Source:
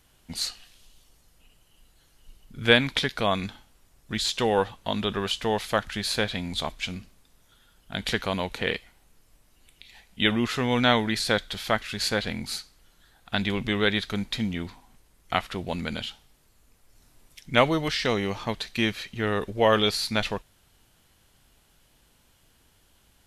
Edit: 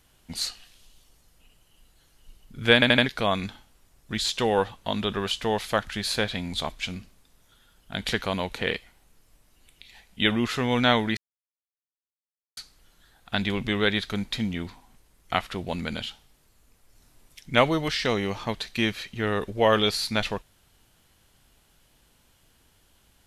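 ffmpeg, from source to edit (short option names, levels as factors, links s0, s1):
-filter_complex "[0:a]asplit=7[s0][s1][s2][s3][s4][s5][s6];[s0]atrim=end=2.822[s7];[s1]atrim=start=2.738:end=2.822[s8];[s2]atrim=start=2.738:end=2.822[s9];[s3]atrim=start=2.738:end=2.822[s10];[s4]atrim=start=3.058:end=11.17,asetpts=PTS-STARTPTS,afade=t=out:st=8.108:d=0.004:c=hsin[s11];[s5]atrim=start=11.17:end=12.57,asetpts=PTS-STARTPTS,volume=0[s12];[s6]atrim=start=12.57,asetpts=PTS-STARTPTS,afade=t=in:d=0.004:c=hsin[s13];[s7][s8]acrossfade=d=0.004:c1=hsin:c2=hsin[s14];[s14][s9]acrossfade=d=0.004:c1=hsin:c2=hsin[s15];[s15][s10]acrossfade=d=0.004:c1=hsin:c2=hsin[s16];[s11][s12][s13]concat=n=3:v=0:a=1[s17];[s16][s17]acrossfade=d=0.004:c1=hsin:c2=hsin"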